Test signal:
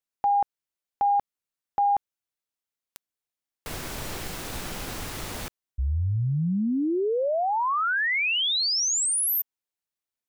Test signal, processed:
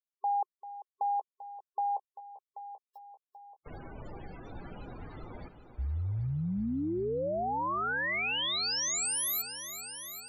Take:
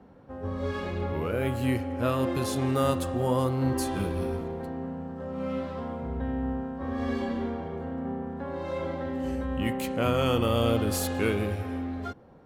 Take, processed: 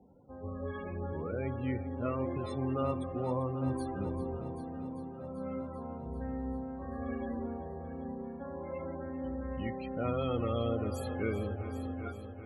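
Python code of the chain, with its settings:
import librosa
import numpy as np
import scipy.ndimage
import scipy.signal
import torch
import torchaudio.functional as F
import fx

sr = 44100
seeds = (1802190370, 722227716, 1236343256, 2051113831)

y = fx.spec_topn(x, sr, count=32)
y = fx.echo_heads(y, sr, ms=392, heads='first and second', feedback_pct=56, wet_db=-14.5)
y = y * librosa.db_to_amplitude(-7.5)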